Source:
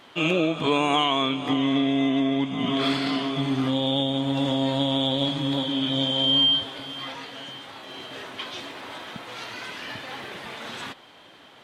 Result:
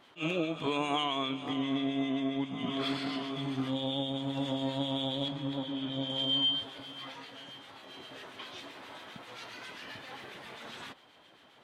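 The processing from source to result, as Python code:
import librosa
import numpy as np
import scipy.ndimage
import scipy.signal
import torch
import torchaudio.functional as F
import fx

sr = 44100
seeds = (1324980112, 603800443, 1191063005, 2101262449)

y = fx.high_shelf(x, sr, hz=3600.0, db=-9.5, at=(5.28, 6.1))
y = fx.harmonic_tremolo(y, sr, hz=7.5, depth_pct=50, crossover_hz=1500.0)
y = fx.attack_slew(y, sr, db_per_s=310.0)
y = y * librosa.db_to_amplitude(-7.0)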